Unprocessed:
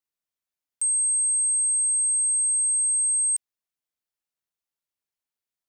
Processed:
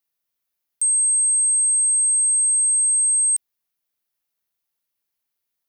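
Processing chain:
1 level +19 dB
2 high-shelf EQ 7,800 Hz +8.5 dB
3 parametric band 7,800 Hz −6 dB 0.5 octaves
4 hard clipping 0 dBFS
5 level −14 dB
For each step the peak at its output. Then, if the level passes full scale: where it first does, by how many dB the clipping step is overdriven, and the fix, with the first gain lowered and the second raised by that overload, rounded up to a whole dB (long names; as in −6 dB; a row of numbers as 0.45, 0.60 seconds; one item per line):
−0.5, +4.0, +3.0, 0.0, −14.0 dBFS
step 2, 3.0 dB
step 1 +16 dB, step 5 −11 dB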